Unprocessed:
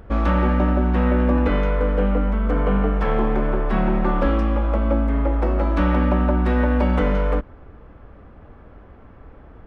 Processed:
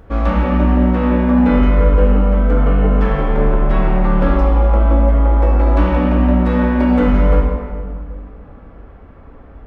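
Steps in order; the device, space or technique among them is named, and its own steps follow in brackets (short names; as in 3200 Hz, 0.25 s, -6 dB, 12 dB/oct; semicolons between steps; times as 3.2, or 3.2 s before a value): stairwell (reverb RT60 2.0 s, pre-delay 3 ms, DRR -1 dB)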